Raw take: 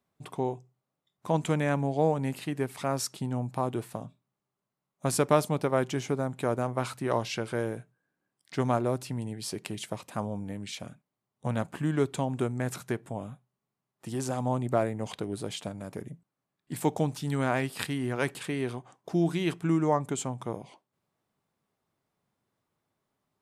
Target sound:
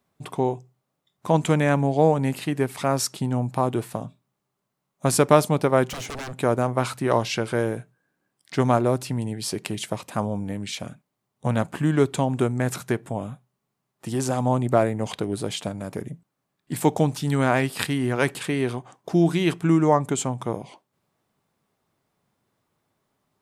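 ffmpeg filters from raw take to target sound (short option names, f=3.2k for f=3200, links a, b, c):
-filter_complex "[0:a]asettb=1/sr,asplit=3[a][b][c];[a]atrim=end=5.874[d];[b]atrim=start=5.87:end=6.38,asetpts=PTS-STARTPTS,afade=t=in:d=0.004:c=qsin,afade=t=out:st=0.506:d=0.004:c=qsin,aeval=exprs='0.0178*(abs(mod(val(0)/0.0178+3,4)-2)-1)':c=same[e];[c]atrim=start=6.376[f];[d][e]acrossfade=d=0.004:c1=hsin:c2=qsin[g];[g][f]acrossfade=d=0.004:c1=qsin:c2=hsin,volume=7dB"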